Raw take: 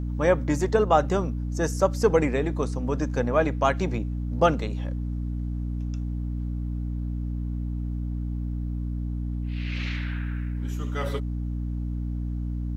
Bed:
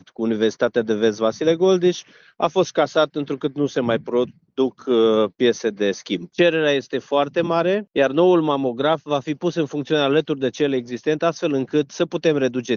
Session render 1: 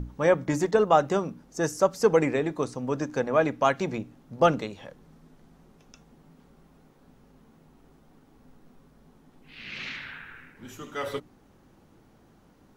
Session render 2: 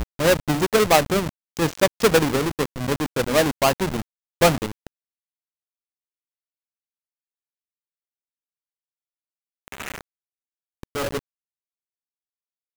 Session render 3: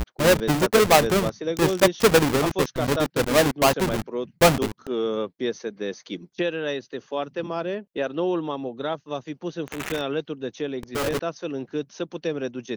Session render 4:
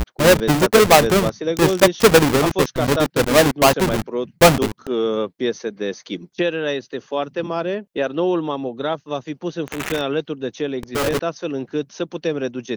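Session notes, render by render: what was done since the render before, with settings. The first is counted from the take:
notches 60/120/180/240/300 Hz
half-waves squared off; bit-crush 5-bit
add bed -9.5 dB
gain +5 dB; limiter -2 dBFS, peak gain reduction 1.5 dB

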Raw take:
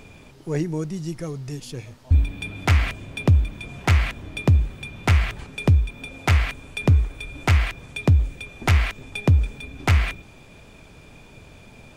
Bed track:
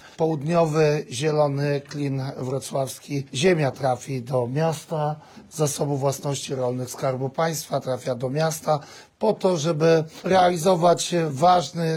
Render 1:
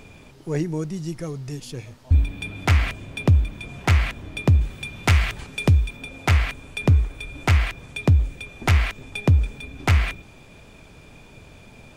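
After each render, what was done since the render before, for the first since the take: 4.61–5.97 high shelf 2300 Hz +5.5 dB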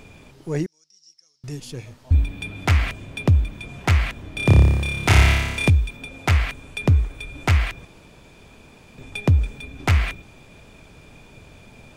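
0.66–1.44 band-pass 5400 Hz, Q 12; 4.34–5.7 flutter echo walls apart 5 m, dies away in 1.2 s; 7.85–8.98 room tone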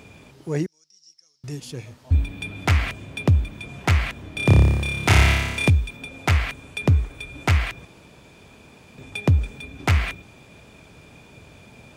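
HPF 63 Hz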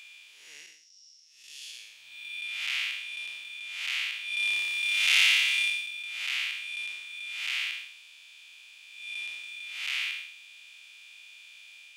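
time blur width 0.243 s; resonant high-pass 2900 Hz, resonance Q 2.7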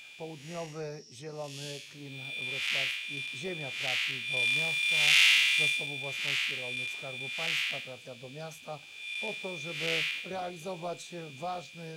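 add bed track -20 dB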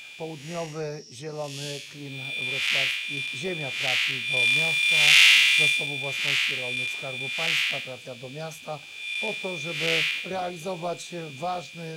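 gain +6.5 dB

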